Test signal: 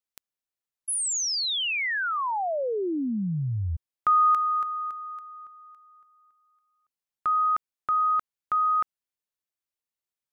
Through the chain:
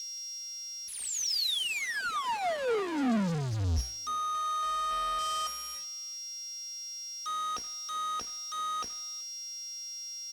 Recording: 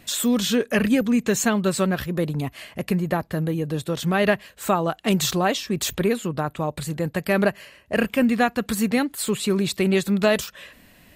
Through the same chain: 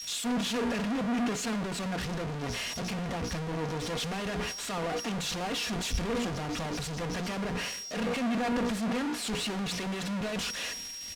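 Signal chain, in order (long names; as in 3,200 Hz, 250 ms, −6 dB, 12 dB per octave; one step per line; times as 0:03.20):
noise gate with hold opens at −42 dBFS, closes at −47 dBFS, hold 22 ms, range −30 dB
mains-hum notches 60/120/180/240/300/360/420/480 Hz
dynamic equaliser 2,700 Hz, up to +6 dB, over −47 dBFS, Q 5.6
steady tone 5,600 Hz −40 dBFS
downward compressor 10 to 1, threshold −27 dBFS
leveller curve on the samples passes 2
upward compression, threshold −28 dBFS
comparator with hysteresis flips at −41 dBFS
high-frequency loss of the air 54 metres
comb filter 4.2 ms, depth 37%
far-end echo of a speakerphone 380 ms, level −13 dB
multiband upward and downward expander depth 100%
level −6.5 dB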